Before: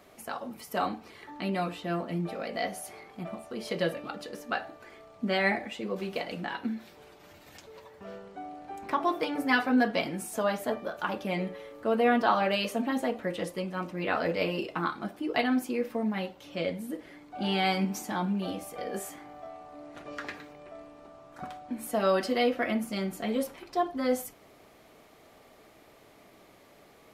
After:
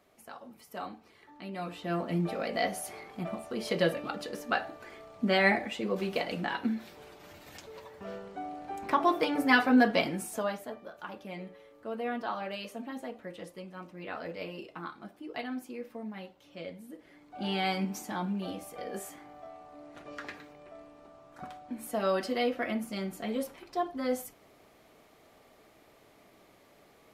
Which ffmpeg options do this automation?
-af "volume=9dB,afade=t=in:st=1.52:d=0.64:silence=0.251189,afade=t=out:st=10:d=0.69:silence=0.237137,afade=t=in:st=16.97:d=0.49:silence=0.446684"

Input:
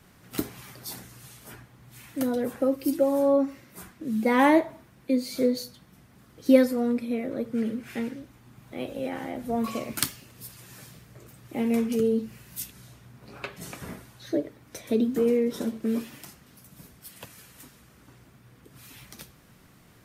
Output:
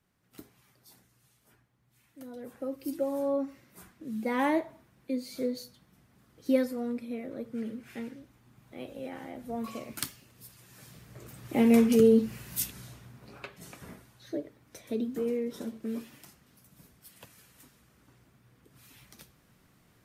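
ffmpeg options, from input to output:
-af "volume=4dB,afade=t=in:st=2.23:d=0.79:silence=0.266073,afade=t=in:st=10.73:d=0.81:silence=0.251189,afade=t=out:st=12.64:d=0.84:silence=0.251189"

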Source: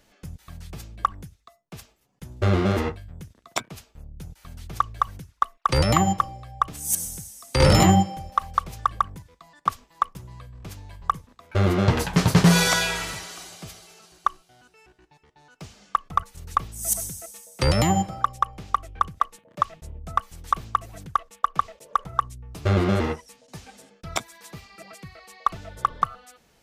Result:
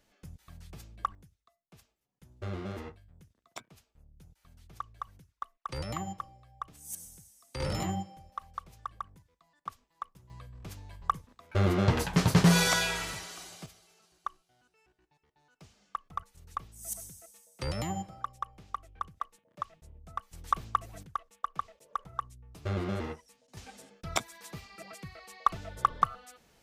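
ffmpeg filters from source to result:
-af "asetnsamples=n=441:p=0,asendcmd='1.15 volume volume -17dB;10.3 volume volume -5.5dB;13.66 volume volume -14dB;20.33 volume volume -5.5dB;21.03 volume volume -12dB;23.57 volume volume -3dB',volume=-9.5dB"

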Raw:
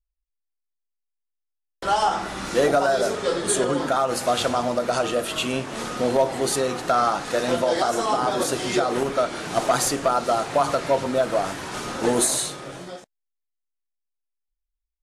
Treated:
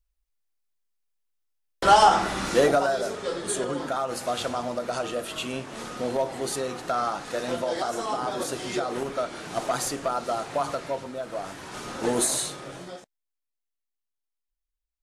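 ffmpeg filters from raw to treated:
-af "volume=15.5dB,afade=t=out:st=1.9:d=1.11:silence=0.251189,afade=t=out:st=10.65:d=0.52:silence=0.473151,afade=t=in:st=11.17:d=1.15:silence=0.316228"

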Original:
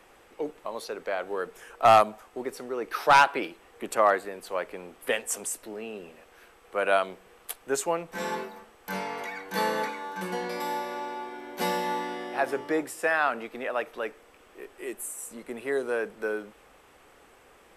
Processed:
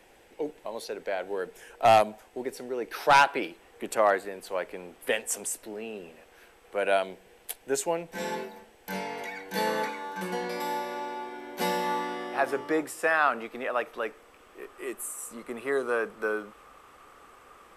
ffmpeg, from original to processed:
-af "asetnsamples=n=441:p=0,asendcmd='3.01 equalizer g -5.5;6.76 equalizer g -13.5;9.67 equalizer g -2.5;11.8 equalizer g 4.5;14.62 equalizer g 11.5',equalizer=f=1.2k:t=o:w=0.34:g=-12.5"

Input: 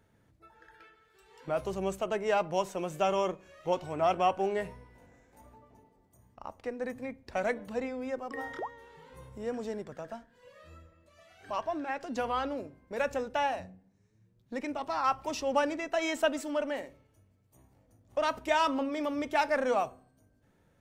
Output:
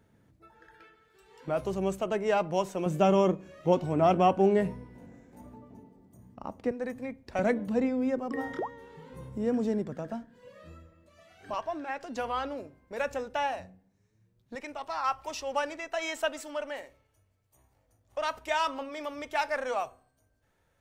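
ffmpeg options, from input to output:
-af "asetnsamples=n=441:p=0,asendcmd='2.86 equalizer g 14;6.71 equalizer g 2.5;7.39 equalizer g 11.5;10.72 equalizer g 5.5;11.54 equalizer g -3;14.55 equalizer g -11.5',equalizer=f=210:t=o:w=2:g=5"

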